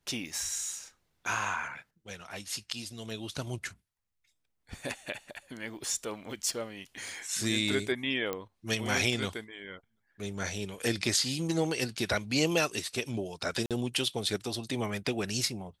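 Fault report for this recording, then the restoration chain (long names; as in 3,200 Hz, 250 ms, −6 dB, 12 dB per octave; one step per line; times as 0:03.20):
0:08.33: click −18 dBFS
0:13.66–0:13.71: drop-out 47 ms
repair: click removal
repair the gap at 0:13.66, 47 ms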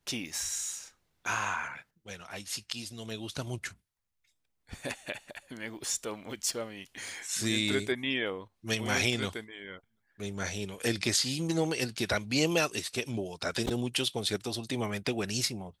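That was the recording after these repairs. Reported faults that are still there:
0:08.33: click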